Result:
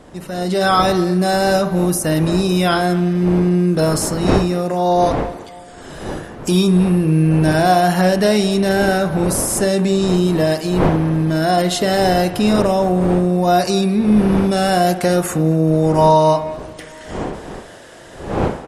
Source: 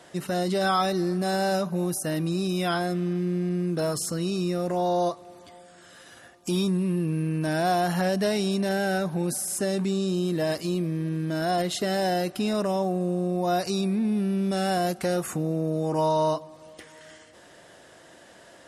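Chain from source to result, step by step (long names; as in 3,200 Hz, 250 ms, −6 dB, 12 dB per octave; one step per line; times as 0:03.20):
wind on the microphone 530 Hz −36 dBFS
automatic gain control gain up to 11.5 dB
far-end echo of a speakerphone 220 ms, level −15 dB
convolution reverb, pre-delay 38 ms, DRR 9.5 dB
level −1 dB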